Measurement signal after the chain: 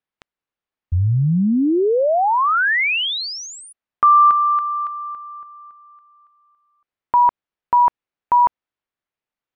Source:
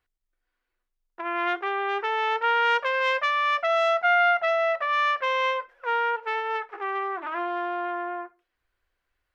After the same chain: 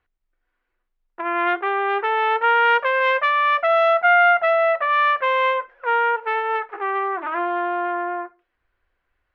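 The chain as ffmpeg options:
-af "lowpass=2.6k,volume=6dB"

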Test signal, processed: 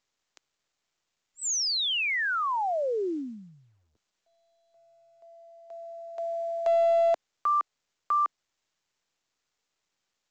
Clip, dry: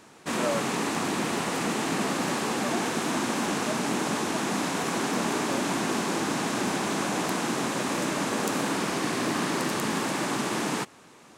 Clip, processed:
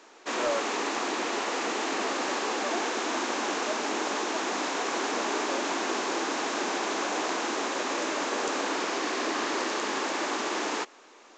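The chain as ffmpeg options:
-af "highpass=f=320:w=0.5412,highpass=f=320:w=1.3066,aeval=exprs='clip(val(0),-1,0.1)':c=same" -ar 16000 -c:a pcm_mulaw

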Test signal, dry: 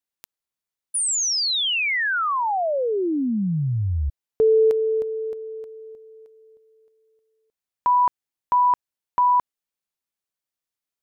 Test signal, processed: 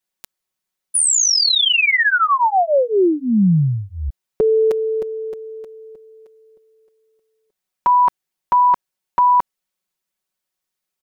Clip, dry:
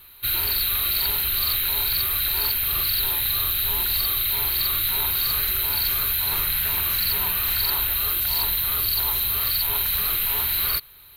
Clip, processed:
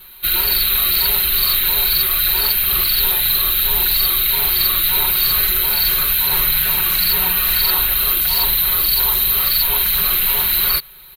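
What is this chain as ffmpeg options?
-af "aecho=1:1:5.4:1,volume=4dB"

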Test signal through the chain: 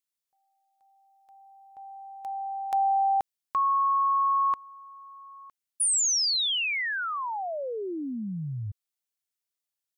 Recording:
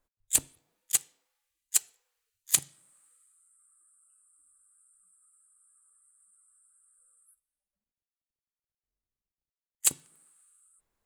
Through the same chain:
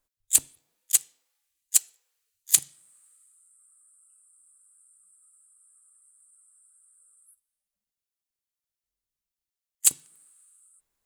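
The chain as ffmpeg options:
-af "highshelf=f=2.5k:g=9.5,volume=-4dB"

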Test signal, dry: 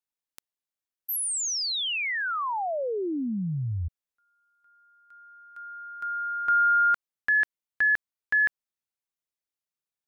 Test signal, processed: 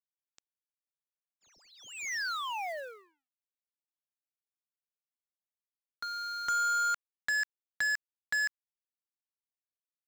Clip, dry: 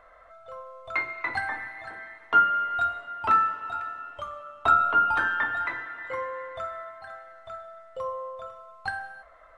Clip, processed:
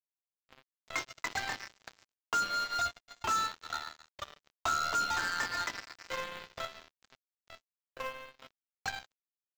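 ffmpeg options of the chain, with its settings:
-filter_complex "[0:a]acrossover=split=640|1800[a][b][c];[a]acompressor=threshold=-40dB:ratio=4[d];[b]acompressor=threshold=-36dB:ratio=2.5[e];[c]acompressor=threshold=-37dB:ratio=5[f];[d][e][f]amix=inputs=3:normalize=0,aresample=16000,acrusher=bits=4:mix=0:aa=0.5,aresample=44100,highshelf=f=4.2k:g=3.5,acrusher=bits=5:mode=log:mix=0:aa=0.000001,volume=-3dB"

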